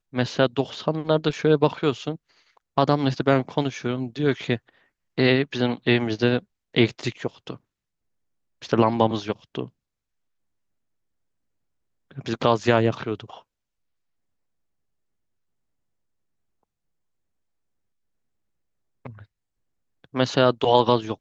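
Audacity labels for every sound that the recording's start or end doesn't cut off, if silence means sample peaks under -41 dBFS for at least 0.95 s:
8.620000	9.680000	sound
12.110000	13.390000	sound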